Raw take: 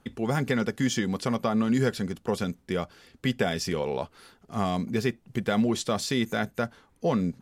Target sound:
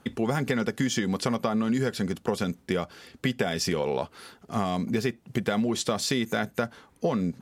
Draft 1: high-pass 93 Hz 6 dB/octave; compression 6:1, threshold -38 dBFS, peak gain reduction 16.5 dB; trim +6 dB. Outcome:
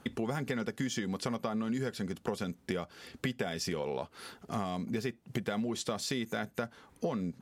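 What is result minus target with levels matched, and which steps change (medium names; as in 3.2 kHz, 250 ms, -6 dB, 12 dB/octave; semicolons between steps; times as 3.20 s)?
compression: peak gain reduction +8 dB
change: compression 6:1, threshold -28.5 dBFS, peak gain reduction 8.5 dB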